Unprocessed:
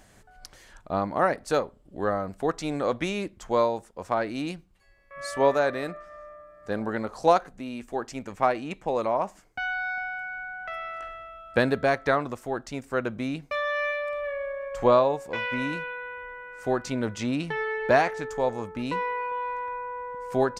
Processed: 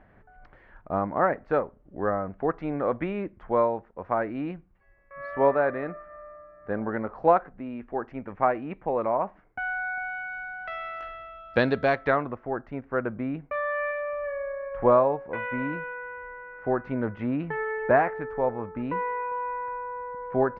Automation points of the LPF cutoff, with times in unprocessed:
LPF 24 dB/oct
9.95 s 2000 Hz
10.39 s 4700 Hz
11.84 s 4700 Hz
12.36 s 1900 Hz

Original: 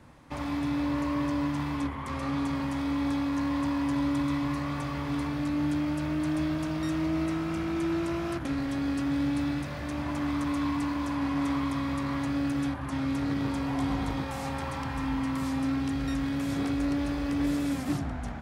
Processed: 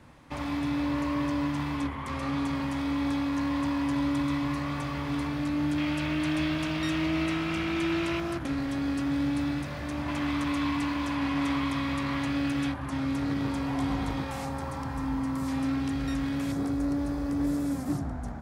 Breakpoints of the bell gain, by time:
bell 2800 Hz 1.4 oct
+2.5 dB
from 5.78 s +11 dB
from 8.2 s +1 dB
from 10.08 s +7 dB
from 12.72 s +0.5 dB
from 14.45 s -8 dB
from 15.48 s 0 dB
from 16.52 s -11.5 dB

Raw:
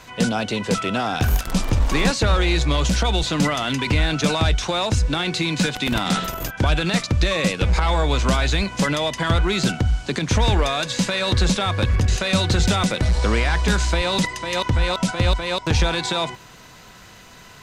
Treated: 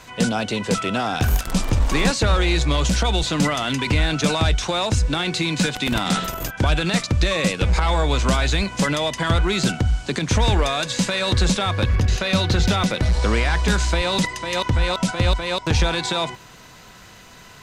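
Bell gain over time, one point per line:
bell 8200 Hz 0.57 oct
11.49 s +2.5 dB
12.14 s -7.5 dB
12.74 s -7.5 dB
13.28 s +0.5 dB

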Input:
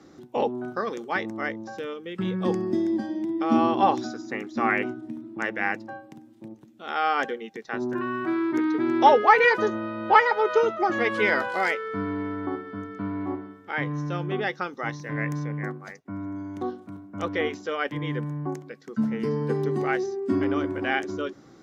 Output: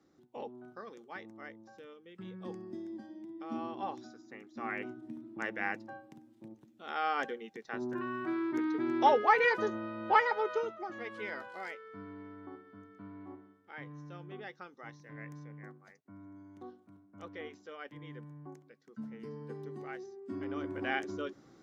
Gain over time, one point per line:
4.46 s -18 dB
5.13 s -8.5 dB
10.37 s -8.5 dB
10.87 s -18 dB
20.24 s -18 dB
20.82 s -8 dB

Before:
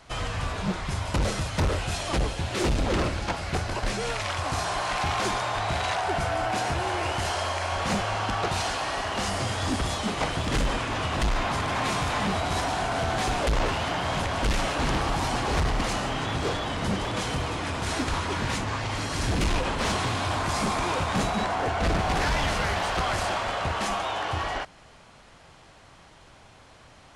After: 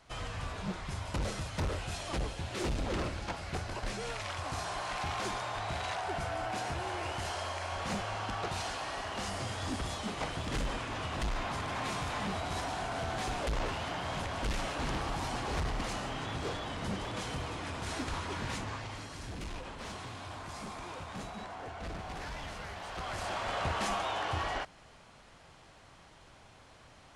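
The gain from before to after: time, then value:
18.66 s -9 dB
19.22 s -16.5 dB
22.78 s -16.5 dB
23.58 s -5 dB

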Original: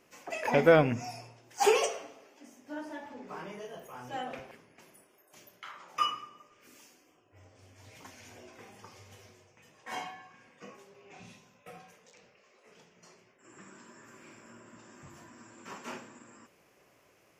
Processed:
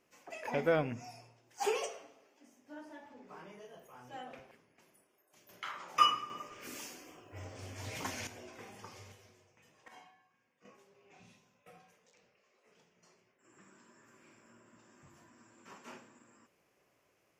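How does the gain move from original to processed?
-9 dB
from 5.49 s +3.5 dB
from 6.3 s +11 dB
from 8.27 s +1 dB
from 9.12 s -6 dB
from 9.88 s -18.5 dB
from 10.65 s -9 dB

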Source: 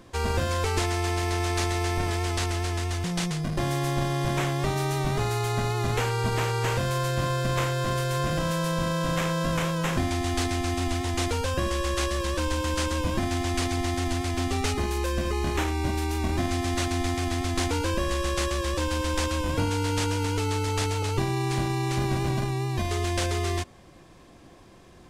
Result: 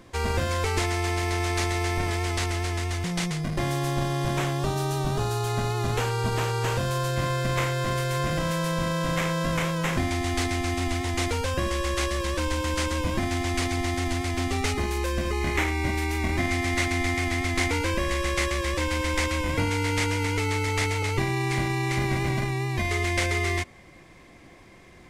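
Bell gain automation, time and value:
bell 2100 Hz 0.31 oct
+5 dB
from 3.71 s -1 dB
from 4.59 s -12 dB
from 5.47 s -3 dB
from 7.16 s +6 dB
from 15.41 s +13.5 dB

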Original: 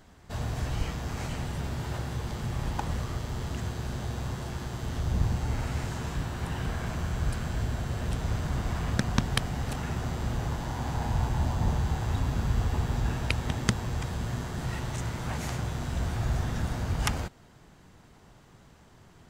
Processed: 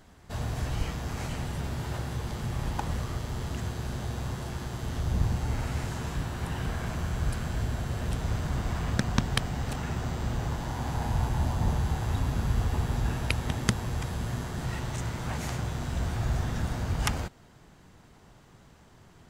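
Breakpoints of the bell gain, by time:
bell 11000 Hz 0.23 oct
8.01 s +5.5 dB
9.42 s -3.5 dB
10.27 s -3.5 dB
11.02 s +8.5 dB
14.29 s +8.5 dB
14.77 s +1 dB

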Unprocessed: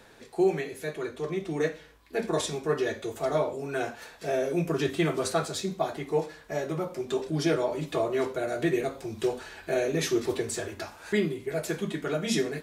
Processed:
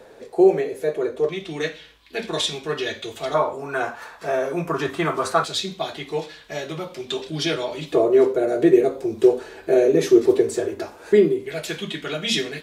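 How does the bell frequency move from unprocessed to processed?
bell +14 dB 1.3 oct
510 Hz
from 1.29 s 3300 Hz
from 3.34 s 1100 Hz
from 5.44 s 3400 Hz
from 7.92 s 410 Hz
from 11.46 s 3200 Hz

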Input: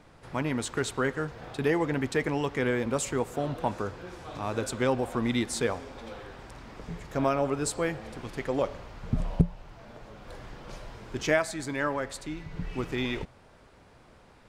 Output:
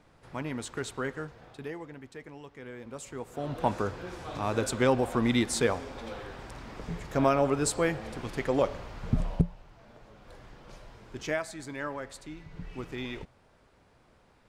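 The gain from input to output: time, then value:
1.18 s -5.5 dB
2 s -17.5 dB
2.61 s -17.5 dB
3.24 s -9.5 dB
3.66 s +2 dB
9.09 s +2 dB
9.69 s -6.5 dB

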